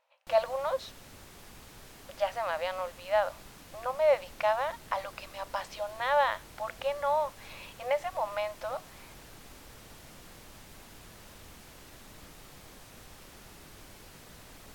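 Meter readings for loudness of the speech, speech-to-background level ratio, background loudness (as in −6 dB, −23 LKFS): −31.5 LKFS, 19.0 dB, −50.5 LKFS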